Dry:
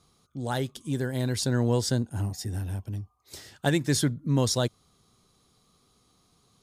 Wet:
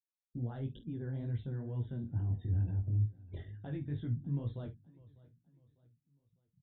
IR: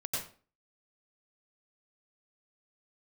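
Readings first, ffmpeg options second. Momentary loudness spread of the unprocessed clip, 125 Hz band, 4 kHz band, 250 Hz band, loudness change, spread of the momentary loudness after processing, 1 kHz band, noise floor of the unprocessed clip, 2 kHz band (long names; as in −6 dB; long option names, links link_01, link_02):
13 LU, −5.5 dB, below −30 dB, −13.0 dB, −9.5 dB, 13 LU, below −20 dB, −67 dBFS, below −20 dB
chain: -filter_complex "[0:a]aresample=8000,aresample=44100,afftfilt=real='re*gte(hypot(re,im),0.00562)':imag='im*gte(hypot(re,im),0.00562)':win_size=1024:overlap=0.75,areverse,acompressor=threshold=-34dB:ratio=20,areverse,alimiter=level_in=11dB:limit=-24dB:level=0:latency=1:release=127,volume=-11dB,acontrast=59,aemphasis=mode=reproduction:type=riaa,asplit=2[link_01][link_02];[link_02]adelay=48,volume=-12dB[link_03];[link_01][link_03]amix=inputs=2:normalize=0,asplit=2[link_04][link_05];[link_05]aecho=0:1:600|1200|1800:0.0841|0.0328|0.0128[link_06];[link_04][link_06]amix=inputs=2:normalize=0,flanger=delay=17:depth=5.2:speed=2.2,volume=-7dB"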